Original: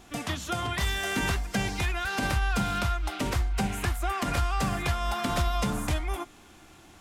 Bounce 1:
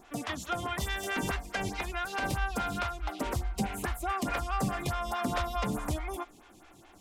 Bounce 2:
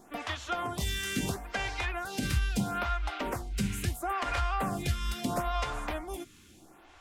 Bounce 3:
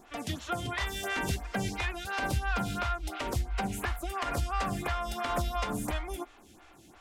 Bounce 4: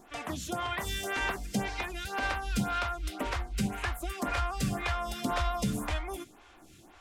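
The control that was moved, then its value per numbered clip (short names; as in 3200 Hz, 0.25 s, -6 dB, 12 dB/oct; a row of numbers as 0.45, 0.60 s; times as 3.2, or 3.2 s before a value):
photocell phaser, rate: 4.7, 0.75, 2.9, 1.9 Hz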